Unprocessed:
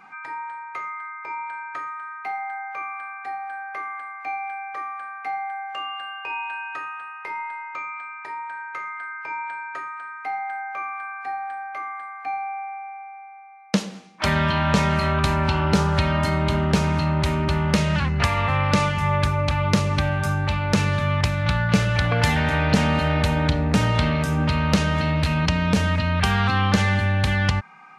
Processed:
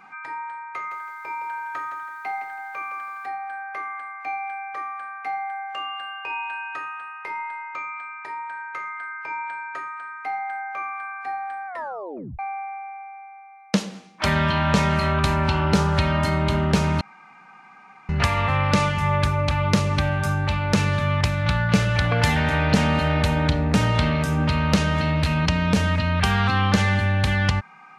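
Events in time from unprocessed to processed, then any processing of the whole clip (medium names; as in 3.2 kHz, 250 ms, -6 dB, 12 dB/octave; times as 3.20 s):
0.74–3.26 s: bit-crushed delay 164 ms, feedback 35%, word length 9-bit, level -8.5 dB
11.67 s: tape stop 0.72 s
17.01–18.09 s: room tone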